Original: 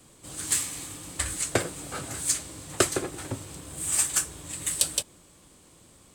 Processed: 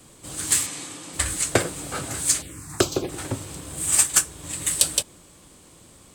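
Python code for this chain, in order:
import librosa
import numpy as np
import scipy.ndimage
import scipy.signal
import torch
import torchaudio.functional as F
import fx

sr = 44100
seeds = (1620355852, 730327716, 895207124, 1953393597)

y = fx.bandpass_edges(x, sr, low_hz=fx.line((0.66, 140.0), (1.12, 230.0)), high_hz=8000.0, at=(0.66, 1.12), fade=0.02)
y = fx.env_phaser(y, sr, low_hz=380.0, high_hz=1900.0, full_db=-23.0, at=(2.41, 3.08), fade=0.02)
y = fx.transient(y, sr, attack_db=3, sustain_db=-4, at=(3.86, 4.43))
y = y * librosa.db_to_amplitude(5.0)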